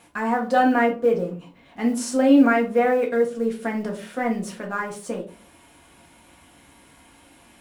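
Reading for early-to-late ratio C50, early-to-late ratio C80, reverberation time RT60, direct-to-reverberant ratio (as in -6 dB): 11.5 dB, 16.5 dB, 0.40 s, -0.5 dB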